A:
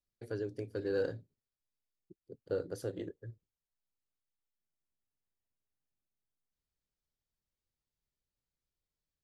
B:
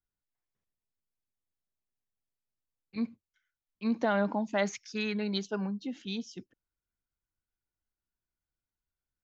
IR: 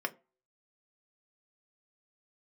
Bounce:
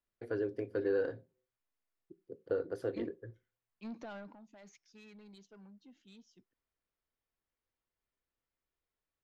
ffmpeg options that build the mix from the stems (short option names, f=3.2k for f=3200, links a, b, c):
-filter_complex "[0:a]bass=f=250:g=-4,treble=f=4k:g=-14,volume=0.5dB,asplit=2[a][b];[b]volume=-8dB[c];[1:a]alimiter=limit=-24dB:level=0:latency=1:release=55,asoftclip=type=tanh:threshold=-30dB,volume=-8.5dB,afade=t=out:st=4.13:d=0.23:silence=0.266073[d];[2:a]atrim=start_sample=2205[e];[c][e]afir=irnorm=-1:irlink=0[f];[a][d][f]amix=inputs=3:normalize=0,alimiter=limit=-23dB:level=0:latency=1:release=440"